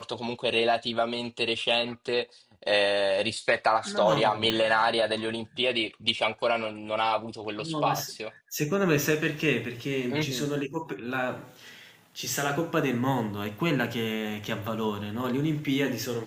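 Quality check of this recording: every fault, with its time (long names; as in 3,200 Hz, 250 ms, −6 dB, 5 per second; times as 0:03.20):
0:04.50: click −11 dBFS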